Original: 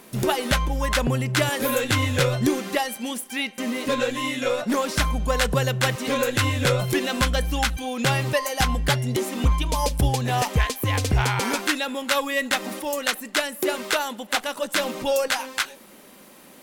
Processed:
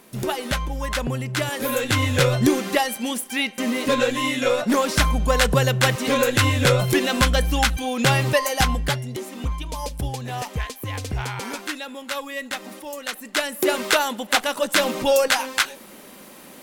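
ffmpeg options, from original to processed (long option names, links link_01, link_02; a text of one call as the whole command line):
ffmpeg -i in.wav -af "volume=14.5dB,afade=type=in:start_time=1.46:duration=0.93:silence=0.473151,afade=type=out:start_time=8.52:duration=0.57:silence=0.316228,afade=type=in:start_time=13.07:duration=0.69:silence=0.281838" out.wav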